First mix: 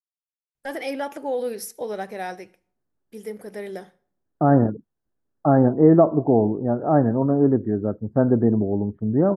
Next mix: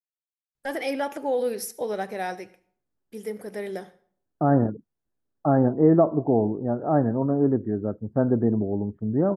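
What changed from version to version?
first voice: send +7.0 dB; second voice -3.5 dB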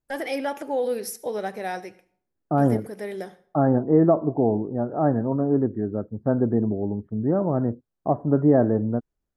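first voice: entry -0.55 s; second voice: entry -1.90 s

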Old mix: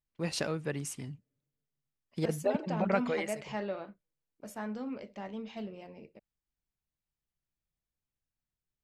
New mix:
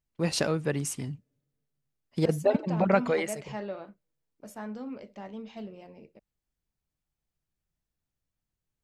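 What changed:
first voice +6.5 dB; master: add bell 2300 Hz -2.5 dB 1.5 oct

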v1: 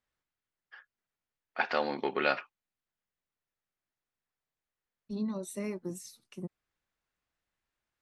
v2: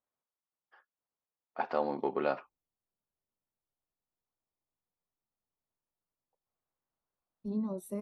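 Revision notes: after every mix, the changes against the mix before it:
second voice: entry +2.35 s; master: add band shelf 3500 Hz -14 dB 2.8 oct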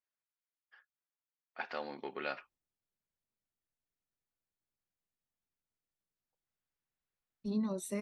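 first voice -10.5 dB; master: add band shelf 3500 Hz +14 dB 2.8 oct

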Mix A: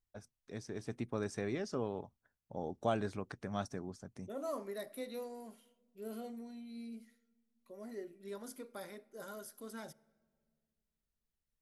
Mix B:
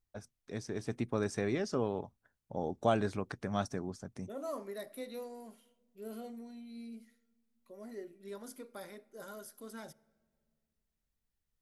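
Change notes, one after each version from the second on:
first voice +4.5 dB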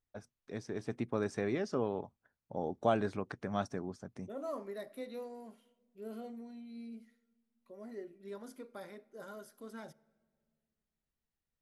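first voice: add low shelf 86 Hz -9.5 dB; master: add high shelf 4900 Hz -10.5 dB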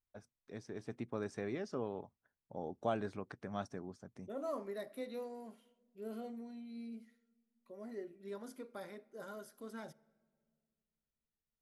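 first voice -6.0 dB

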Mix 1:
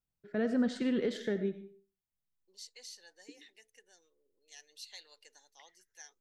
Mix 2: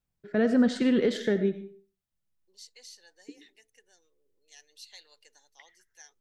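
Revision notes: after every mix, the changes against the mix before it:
first voice +7.5 dB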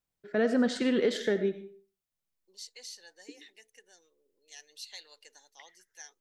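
first voice: add tone controls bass -9 dB, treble +2 dB; second voice +4.0 dB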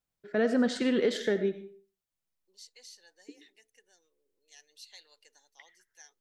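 second voice -6.0 dB

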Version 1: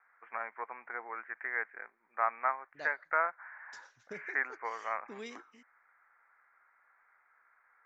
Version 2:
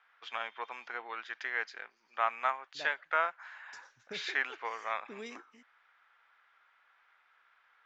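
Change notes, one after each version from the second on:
first voice: remove steep low-pass 2200 Hz 72 dB/oct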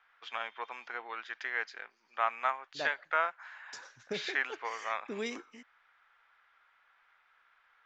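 second voice +8.0 dB

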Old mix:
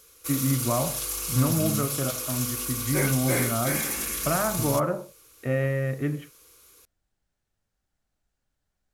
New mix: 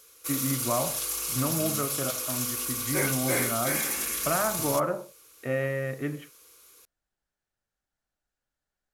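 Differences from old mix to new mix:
second voice -5.0 dB; master: add low shelf 190 Hz -11 dB

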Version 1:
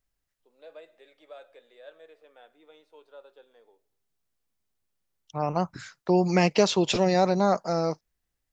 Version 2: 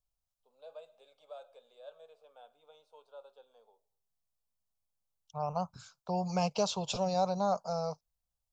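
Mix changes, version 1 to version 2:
second voice -5.5 dB; master: add fixed phaser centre 790 Hz, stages 4

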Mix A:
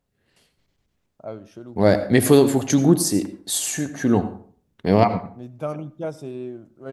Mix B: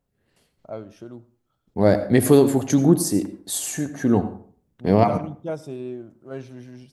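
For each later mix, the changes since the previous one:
first voice: entry -0.55 s; second voice: add bell 3500 Hz -5.5 dB 2.6 oct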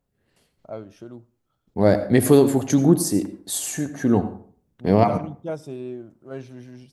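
first voice: send -6.0 dB

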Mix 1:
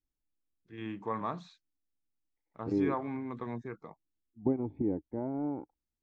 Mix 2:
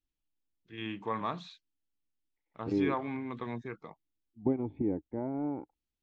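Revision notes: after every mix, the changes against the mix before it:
master: add bell 3100 Hz +10.5 dB 1.1 oct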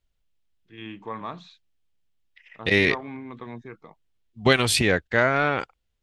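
second voice: remove vocal tract filter u

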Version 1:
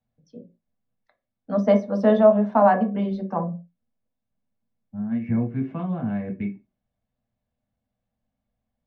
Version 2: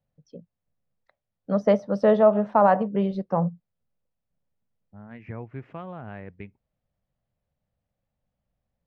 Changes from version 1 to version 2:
first voice: add bell 180 Hz +10.5 dB 1.8 oct; reverb: off

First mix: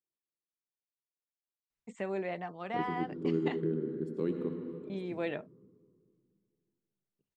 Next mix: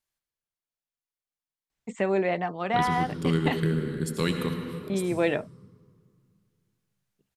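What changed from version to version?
first voice +10.5 dB; second voice: remove band-pass 340 Hz, Q 2.4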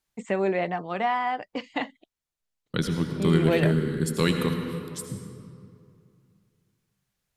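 first voice: entry -1.70 s; second voice +3.5 dB

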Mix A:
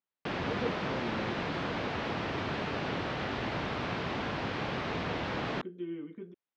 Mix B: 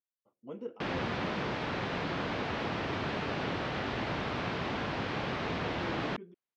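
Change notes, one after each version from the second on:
speech -4.5 dB; background: entry +0.55 s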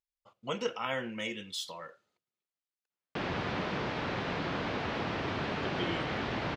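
speech: remove band-pass 300 Hz, Q 2.1; background: entry +2.35 s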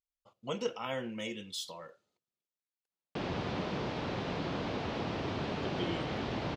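master: add bell 1700 Hz -7 dB 1.5 oct

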